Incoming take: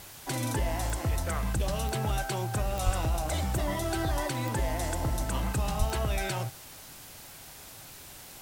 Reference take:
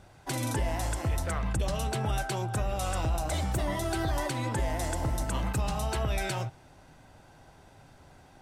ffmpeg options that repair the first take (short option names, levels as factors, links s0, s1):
-filter_complex "[0:a]adeclick=t=4,asplit=3[s0][s1][s2];[s0]afade=t=out:st=2.85:d=0.02[s3];[s1]highpass=f=140:w=0.5412,highpass=f=140:w=1.3066,afade=t=in:st=2.85:d=0.02,afade=t=out:st=2.97:d=0.02[s4];[s2]afade=t=in:st=2.97:d=0.02[s5];[s3][s4][s5]amix=inputs=3:normalize=0,asplit=3[s6][s7][s8];[s6]afade=t=out:st=5.78:d=0.02[s9];[s7]highpass=f=140:w=0.5412,highpass=f=140:w=1.3066,afade=t=in:st=5.78:d=0.02,afade=t=out:st=5.9:d=0.02[s10];[s8]afade=t=in:st=5.9:d=0.02[s11];[s9][s10][s11]amix=inputs=3:normalize=0,afwtdn=0.0045"